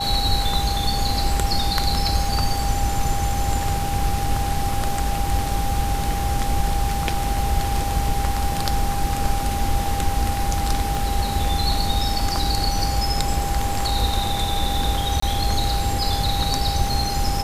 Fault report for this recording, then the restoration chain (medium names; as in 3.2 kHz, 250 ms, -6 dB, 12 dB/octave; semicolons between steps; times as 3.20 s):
whine 800 Hz -26 dBFS
10.95 s: pop
15.20–15.22 s: dropout 24 ms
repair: de-click; band-stop 800 Hz, Q 30; interpolate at 15.20 s, 24 ms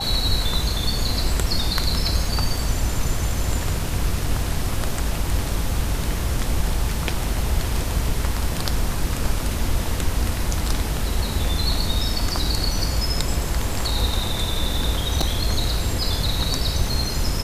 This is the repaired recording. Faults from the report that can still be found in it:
10.95 s: pop